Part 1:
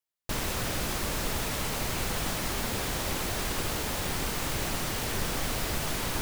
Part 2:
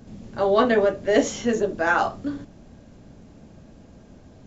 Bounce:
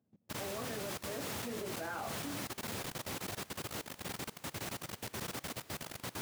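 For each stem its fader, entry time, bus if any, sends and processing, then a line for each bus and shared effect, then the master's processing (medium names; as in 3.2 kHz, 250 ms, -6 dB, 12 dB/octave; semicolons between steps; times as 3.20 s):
-7.5 dB, 0.00 s, no send, none
1.22 s -20.5 dB -> 1.64 s -9.5 dB, 0.00 s, no send, treble shelf 3.3 kHz -12 dB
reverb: none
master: high-pass 91 Hz 24 dB/octave; level held to a coarse grid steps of 20 dB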